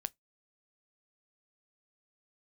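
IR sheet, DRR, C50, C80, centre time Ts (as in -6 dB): 16.0 dB, 35.0 dB, 46.0 dB, 1 ms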